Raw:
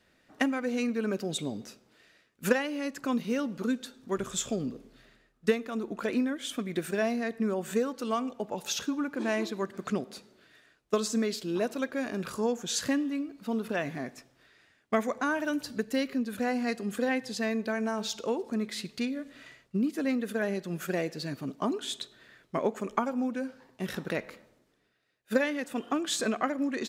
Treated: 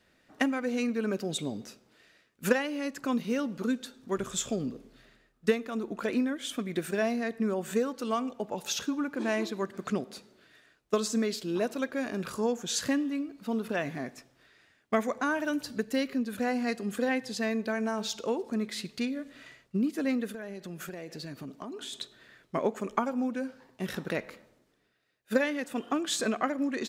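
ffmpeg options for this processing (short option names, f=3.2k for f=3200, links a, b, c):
-filter_complex "[0:a]asplit=3[a][b][c];[a]afade=t=out:st=20.27:d=0.02[d];[b]acompressor=threshold=-36dB:ratio=12:attack=3.2:release=140:knee=1:detection=peak,afade=t=in:st=20.27:d=0.02,afade=t=out:st=21.92:d=0.02[e];[c]afade=t=in:st=21.92:d=0.02[f];[d][e][f]amix=inputs=3:normalize=0"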